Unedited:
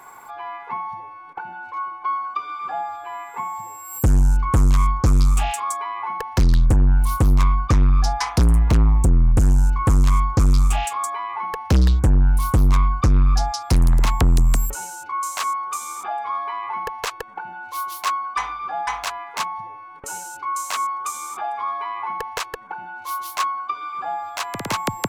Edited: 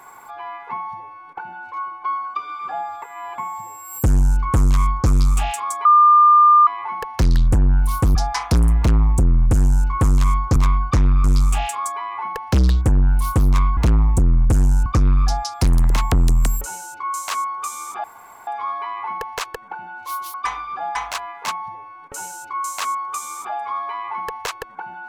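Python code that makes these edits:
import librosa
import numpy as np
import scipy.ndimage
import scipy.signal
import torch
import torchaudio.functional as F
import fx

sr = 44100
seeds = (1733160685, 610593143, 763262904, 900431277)

y = fx.edit(x, sr, fx.reverse_span(start_s=3.02, length_s=0.36),
    fx.insert_tone(at_s=5.85, length_s=0.82, hz=1200.0, db=-7.5),
    fx.move(start_s=7.33, length_s=0.68, to_s=10.42),
    fx.duplicate(start_s=8.64, length_s=1.09, to_s=12.95),
    fx.insert_room_tone(at_s=16.13, length_s=0.43),
    fx.cut(start_s=18.0, length_s=0.26), tone=tone)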